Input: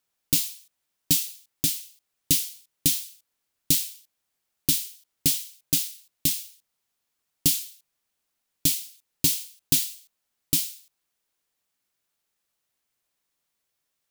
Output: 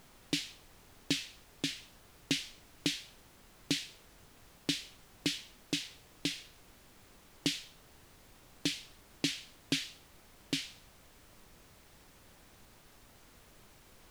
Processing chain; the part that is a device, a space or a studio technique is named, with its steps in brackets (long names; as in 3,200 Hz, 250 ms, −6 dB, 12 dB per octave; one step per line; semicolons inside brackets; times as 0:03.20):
horn gramophone (band-pass filter 270–3,000 Hz; parametric band 1,700 Hz +6 dB; tape wow and flutter; pink noise bed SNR 17 dB)